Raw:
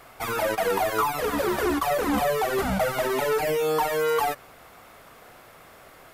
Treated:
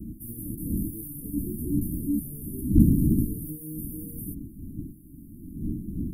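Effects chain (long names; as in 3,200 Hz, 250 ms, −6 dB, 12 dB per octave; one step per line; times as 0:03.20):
wind on the microphone 460 Hz −26 dBFS
Chebyshev band-stop filter 310–9,600 Hz, order 5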